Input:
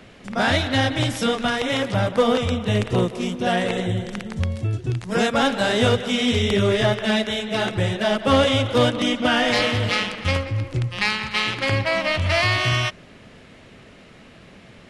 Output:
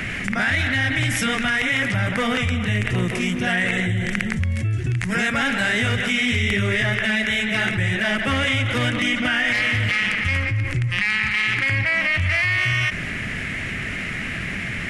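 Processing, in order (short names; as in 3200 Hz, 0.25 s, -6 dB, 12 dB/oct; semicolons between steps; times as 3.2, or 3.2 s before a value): graphic EQ 250/500/1000/2000/4000 Hz -3/-11/-9/+12/-10 dB; limiter -12.5 dBFS, peak gain reduction 8 dB; fast leveller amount 70%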